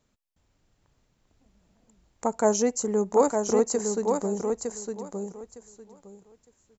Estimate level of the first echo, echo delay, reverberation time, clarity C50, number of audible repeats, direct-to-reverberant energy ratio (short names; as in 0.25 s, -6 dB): -5.0 dB, 0.909 s, none, none, 3, none